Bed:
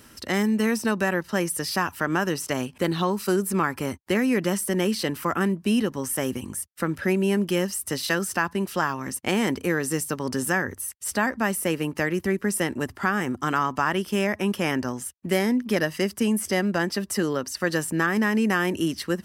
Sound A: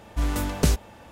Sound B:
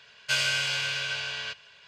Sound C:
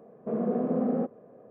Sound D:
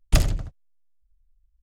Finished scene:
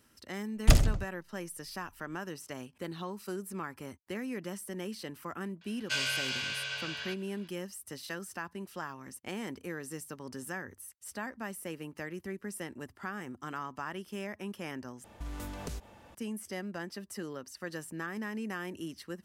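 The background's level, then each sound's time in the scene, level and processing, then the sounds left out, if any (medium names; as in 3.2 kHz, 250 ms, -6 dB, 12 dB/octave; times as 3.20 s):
bed -15.5 dB
0.55 s: add D -2 dB
5.61 s: add B -6 dB
15.04 s: replace with A -8 dB + compression, threshold -28 dBFS
not used: C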